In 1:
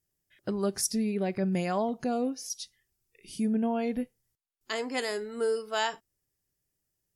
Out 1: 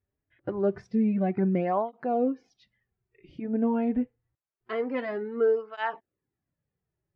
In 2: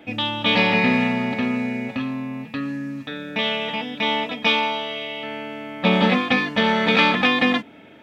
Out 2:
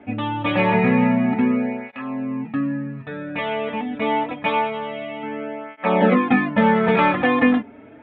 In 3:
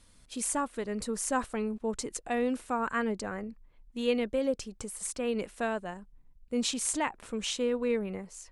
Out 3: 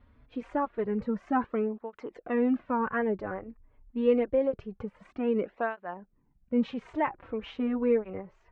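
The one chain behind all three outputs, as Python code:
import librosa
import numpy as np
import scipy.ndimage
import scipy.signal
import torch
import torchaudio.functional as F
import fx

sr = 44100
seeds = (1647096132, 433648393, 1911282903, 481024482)

y = scipy.signal.sosfilt(scipy.signal.bessel(4, 1500.0, 'lowpass', norm='mag', fs=sr, output='sos'), x)
y = fx.flanger_cancel(y, sr, hz=0.26, depth_ms=6.2)
y = y * librosa.db_to_amplitude(6.0)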